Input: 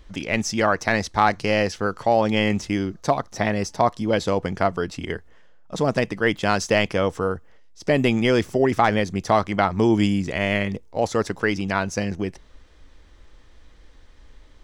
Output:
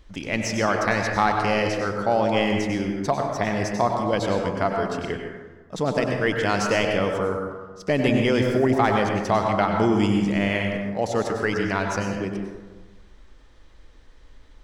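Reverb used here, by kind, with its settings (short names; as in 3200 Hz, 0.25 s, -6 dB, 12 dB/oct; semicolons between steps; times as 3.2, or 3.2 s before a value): plate-style reverb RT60 1.3 s, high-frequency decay 0.4×, pre-delay 85 ms, DRR 2 dB; gain -3 dB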